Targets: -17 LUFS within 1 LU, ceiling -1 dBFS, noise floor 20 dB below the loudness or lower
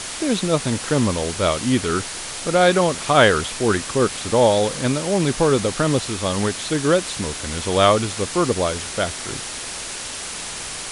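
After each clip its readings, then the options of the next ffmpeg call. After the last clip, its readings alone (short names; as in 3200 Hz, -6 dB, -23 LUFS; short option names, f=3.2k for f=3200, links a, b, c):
noise floor -31 dBFS; noise floor target -41 dBFS; loudness -20.5 LUFS; peak -1.5 dBFS; loudness target -17.0 LUFS
-> -af "afftdn=nr=10:nf=-31"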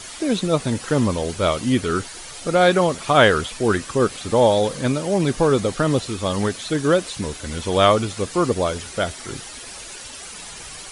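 noise floor -37 dBFS; noise floor target -40 dBFS
-> -af "afftdn=nr=6:nf=-37"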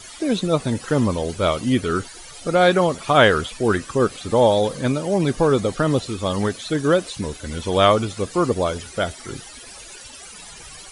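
noise floor -41 dBFS; loudness -20.5 LUFS; peak -2.0 dBFS; loudness target -17.0 LUFS
-> -af "volume=3.5dB,alimiter=limit=-1dB:level=0:latency=1"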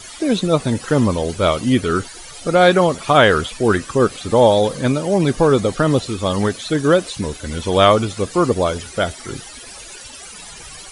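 loudness -17.0 LUFS; peak -1.0 dBFS; noise floor -37 dBFS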